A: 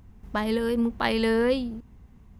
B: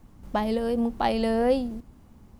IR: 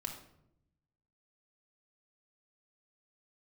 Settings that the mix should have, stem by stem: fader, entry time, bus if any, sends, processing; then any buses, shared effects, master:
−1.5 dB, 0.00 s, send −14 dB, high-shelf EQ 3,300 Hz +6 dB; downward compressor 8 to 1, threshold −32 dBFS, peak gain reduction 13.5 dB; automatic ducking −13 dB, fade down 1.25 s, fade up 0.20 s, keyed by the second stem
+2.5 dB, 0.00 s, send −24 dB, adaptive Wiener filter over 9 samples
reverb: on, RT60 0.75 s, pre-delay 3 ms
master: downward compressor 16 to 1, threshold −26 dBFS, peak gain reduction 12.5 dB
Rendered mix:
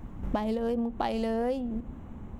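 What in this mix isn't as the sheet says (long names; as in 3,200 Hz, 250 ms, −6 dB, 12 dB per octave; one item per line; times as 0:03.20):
stem A: missing high-shelf EQ 3,300 Hz +6 dB
stem B +2.5 dB → +9.0 dB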